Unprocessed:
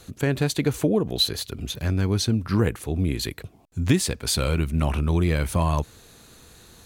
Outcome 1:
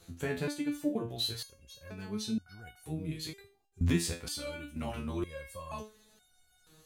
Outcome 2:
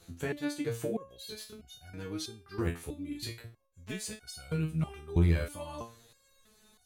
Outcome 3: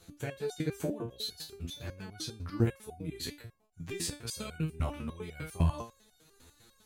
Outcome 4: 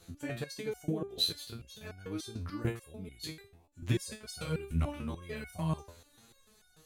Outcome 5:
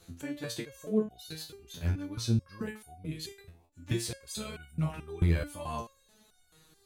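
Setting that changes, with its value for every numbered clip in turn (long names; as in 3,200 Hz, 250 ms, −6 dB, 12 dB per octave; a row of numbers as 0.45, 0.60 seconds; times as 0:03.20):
step-sequenced resonator, speed: 2.1, 3.1, 10, 6.8, 4.6 Hertz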